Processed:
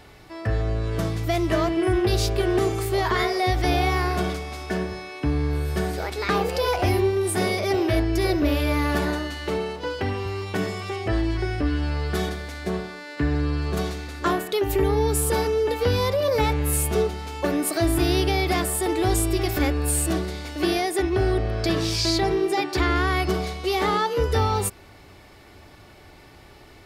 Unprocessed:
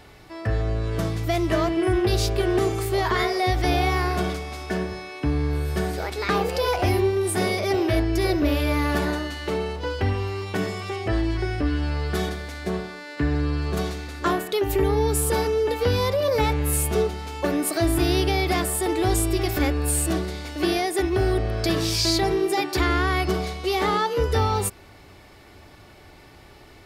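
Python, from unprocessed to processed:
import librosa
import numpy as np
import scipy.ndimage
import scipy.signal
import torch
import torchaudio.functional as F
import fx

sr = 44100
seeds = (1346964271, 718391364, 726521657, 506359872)

y = fx.highpass(x, sr, hz=120.0, slope=12, at=(9.58, 10.26))
y = fx.high_shelf(y, sr, hz=10000.0, db=-10.5, at=(20.97, 22.96))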